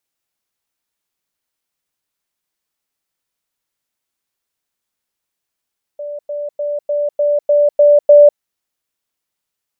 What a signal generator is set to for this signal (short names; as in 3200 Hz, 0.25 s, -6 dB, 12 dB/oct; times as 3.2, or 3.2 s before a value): level ladder 585 Hz -23 dBFS, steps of 3 dB, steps 8, 0.20 s 0.10 s